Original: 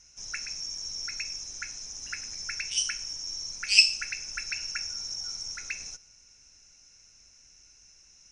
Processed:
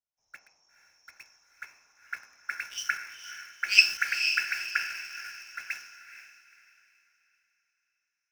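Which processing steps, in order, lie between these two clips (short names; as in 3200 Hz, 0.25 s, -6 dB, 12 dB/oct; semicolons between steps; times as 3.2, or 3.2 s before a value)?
band-pass sweep 750 Hz -> 1500 Hz, 0.07–3.15; in parallel at -3.5 dB: bit-crush 8-bit; on the sum: diffused feedback echo 0.474 s, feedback 54%, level -5 dB; three-band expander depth 70%; gain +2.5 dB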